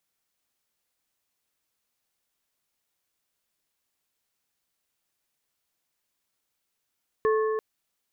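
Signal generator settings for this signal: metal hit plate, length 0.34 s, lowest mode 436 Hz, modes 3, decay 3.05 s, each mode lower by 7 dB, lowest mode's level -19.5 dB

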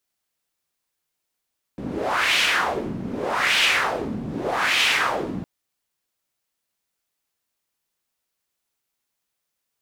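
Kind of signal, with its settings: wind-like swept noise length 3.66 s, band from 200 Hz, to 2.8 kHz, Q 2.4, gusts 3, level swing 11 dB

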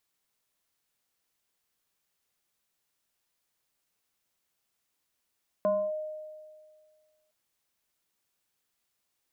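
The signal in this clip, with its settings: FM tone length 1.66 s, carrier 617 Hz, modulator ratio 0.68, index 0.55, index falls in 0.27 s linear, decay 1.89 s, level -21.5 dB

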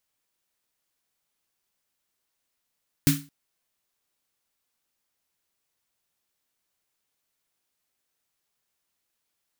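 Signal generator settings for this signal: snare drum length 0.22 s, tones 150 Hz, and 280 Hz, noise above 1.3 kHz, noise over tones -4 dB, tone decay 0.31 s, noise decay 0.29 s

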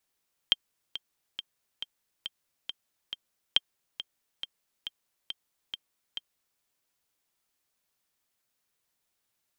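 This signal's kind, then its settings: metronome 138 bpm, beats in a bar 7, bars 2, 3.17 kHz, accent 14 dB -7.5 dBFS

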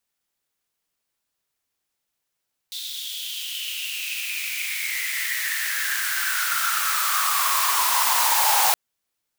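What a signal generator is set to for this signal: swept filtered noise white, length 6.02 s highpass, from 3.7 kHz, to 810 Hz, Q 8.1, exponential, gain ramp +17.5 dB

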